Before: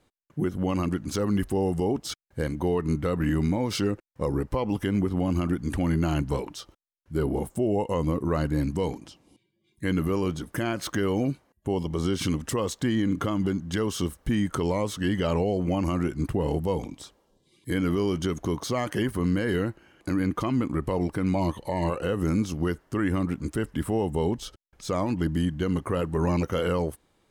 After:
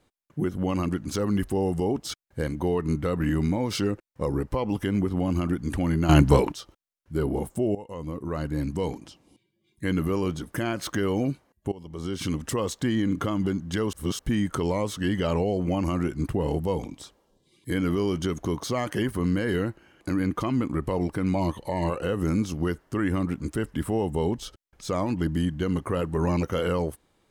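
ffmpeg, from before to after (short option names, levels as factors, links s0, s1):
-filter_complex "[0:a]asplit=7[s0][s1][s2][s3][s4][s5][s6];[s0]atrim=end=6.092[s7];[s1]atrim=start=6.088:end=6.522,asetpts=PTS-STARTPTS,volume=3.16[s8];[s2]atrim=start=6.518:end=7.75,asetpts=PTS-STARTPTS,afade=t=out:st=1.228:d=0.004:c=hsin:silence=0.16788[s9];[s3]atrim=start=7.75:end=11.72,asetpts=PTS-STARTPTS,afade=t=in:d=1.2:silence=0.16788,afade=t=out:st=3.966:d=0.004:c=hsin:silence=0.0944061[s10];[s4]atrim=start=11.72:end=13.932,asetpts=PTS-STARTPTS,afade=t=in:d=0.73:silence=0.0944061[s11];[s5]atrim=start=13.928:end=14.192,asetpts=PTS-STARTPTS,areverse[s12];[s6]atrim=start=14.188[s13];[s7][s8]acrossfade=d=0.004:c1=hsin:c2=hsin[s14];[s9][s10][s11]concat=n=3:v=0:a=1[s15];[s14][s15]acrossfade=d=0.004:c1=hsin:c2=hsin[s16];[s16][s12]acrossfade=d=0.004:c1=hsin:c2=hsin[s17];[s17][s13]acrossfade=d=0.004:c1=hsin:c2=hsin"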